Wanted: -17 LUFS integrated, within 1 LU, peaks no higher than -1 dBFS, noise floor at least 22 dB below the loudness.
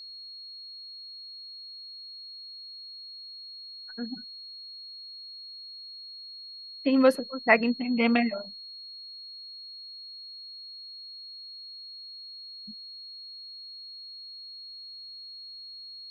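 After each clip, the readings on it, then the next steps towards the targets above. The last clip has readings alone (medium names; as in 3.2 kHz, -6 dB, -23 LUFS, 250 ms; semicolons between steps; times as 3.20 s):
steady tone 4.3 kHz; tone level -41 dBFS; loudness -33.0 LUFS; peak level -5.5 dBFS; loudness target -17.0 LUFS
-> band-stop 4.3 kHz, Q 30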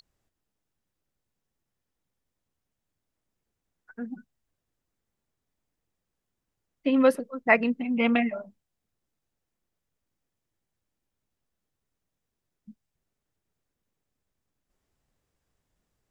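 steady tone not found; loudness -24.5 LUFS; peak level -5.5 dBFS; loudness target -17.0 LUFS
-> trim +7.5 dB; peak limiter -1 dBFS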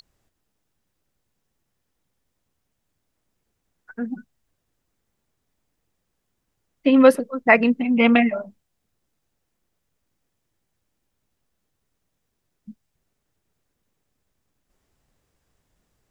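loudness -17.5 LUFS; peak level -1.0 dBFS; noise floor -77 dBFS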